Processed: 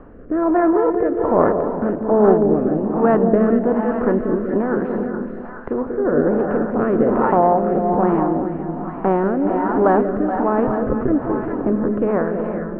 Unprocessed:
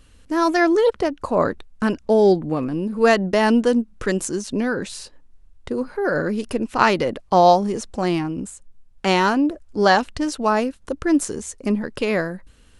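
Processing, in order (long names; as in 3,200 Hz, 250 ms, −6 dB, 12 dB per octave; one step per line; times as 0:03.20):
compressor on every frequency bin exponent 0.6
low-pass filter 1,300 Hz 24 dB per octave
0:10.67–0:11.08: one-pitch LPC vocoder at 8 kHz 130 Hz
on a send: echo with a time of its own for lows and highs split 730 Hz, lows 188 ms, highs 424 ms, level −5 dB
on the sum: reverb whose tail is shaped and stops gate 460 ms rising, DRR 6.5 dB
rotating-speaker cabinet horn 1.2 Hz
level −1 dB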